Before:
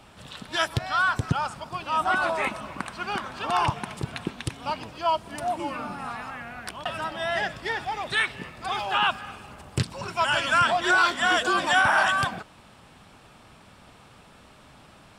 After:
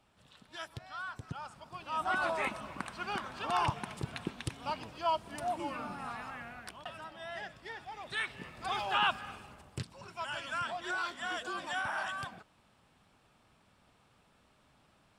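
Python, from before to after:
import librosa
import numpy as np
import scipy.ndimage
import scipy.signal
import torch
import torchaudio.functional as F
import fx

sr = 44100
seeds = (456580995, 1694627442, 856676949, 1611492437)

y = fx.gain(x, sr, db=fx.line((1.2, -18.5), (2.25, -7.0), (6.44, -7.0), (7.04, -15.5), (7.86, -15.5), (8.62, -6.0), (9.35, -6.0), (9.88, -15.5)))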